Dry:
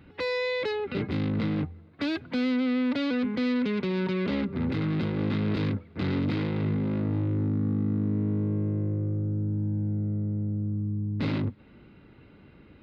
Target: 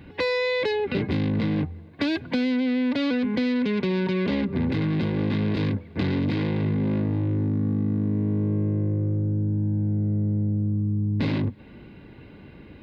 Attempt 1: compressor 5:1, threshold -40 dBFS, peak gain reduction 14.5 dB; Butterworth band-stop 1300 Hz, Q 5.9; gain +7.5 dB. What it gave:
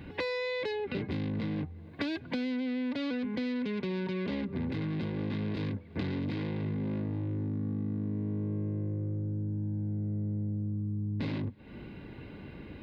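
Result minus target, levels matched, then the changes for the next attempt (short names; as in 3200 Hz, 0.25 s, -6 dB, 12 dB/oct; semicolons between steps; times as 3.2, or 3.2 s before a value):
compressor: peak gain reduction +9 dB
change: compressor 5:1, threshold -28.5 dBFS, peak gain reduction 5.5 dB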